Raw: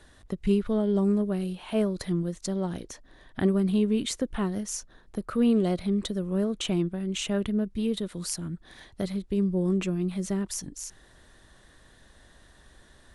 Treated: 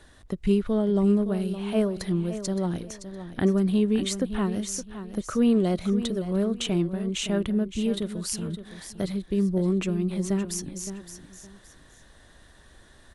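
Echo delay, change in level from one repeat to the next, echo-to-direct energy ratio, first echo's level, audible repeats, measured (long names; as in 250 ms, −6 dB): 566 ms, −11.5 dB, −11.0 dB, −11.5 dB, 2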